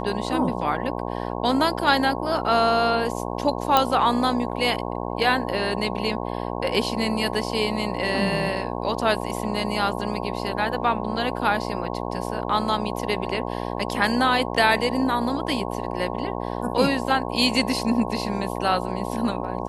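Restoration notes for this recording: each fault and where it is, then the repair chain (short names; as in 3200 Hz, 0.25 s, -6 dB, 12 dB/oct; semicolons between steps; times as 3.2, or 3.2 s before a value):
buzz 60 Hz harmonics 18 -29 dBFS
3.77 pop -4 dBFS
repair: de-click; de-hum 60 Hz, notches 18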